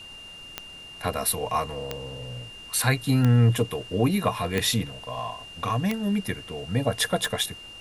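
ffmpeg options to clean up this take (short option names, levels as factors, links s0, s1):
-af "adeclick=t=4,bandreject=f=2800:w=30,afftdn=nr=27:nf=-43"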